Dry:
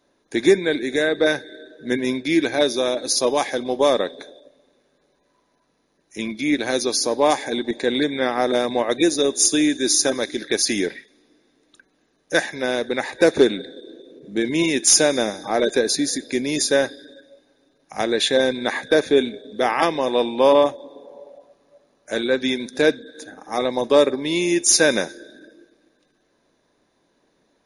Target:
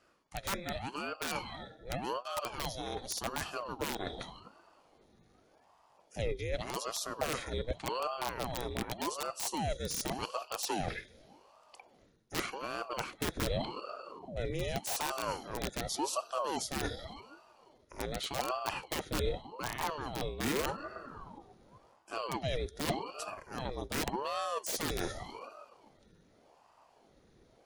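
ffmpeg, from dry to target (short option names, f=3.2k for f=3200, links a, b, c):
-af "aeval=exprs='(mod(2.82*val(0)+1,2)-1)/2.82':c=same,areverse,acompressor=threshold=-31dB:ratio=12,areverse,asubboost=boost=7:cutoff=170,aeval=exprs='val(0)*sin(2*PI*550*n/s+550*0.7/0.86*sin(2*PI*0.86*n/s))':c=same"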